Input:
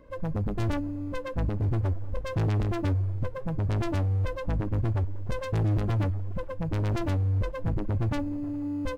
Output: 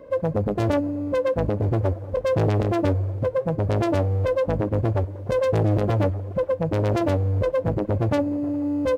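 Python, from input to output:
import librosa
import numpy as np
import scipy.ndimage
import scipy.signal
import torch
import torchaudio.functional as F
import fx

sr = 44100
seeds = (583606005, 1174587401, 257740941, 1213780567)

y = scipy.signal.sosfilt(scipy.signal.butter(2, 84.0, 'highpass', fs=sr, output='sos'), x)
y = fx.peak_eq(y, sr, hz=540.0, db=10.5, octaves=1.0)
y = F.gain(torch.from_numpy(y), 4.5).numpy()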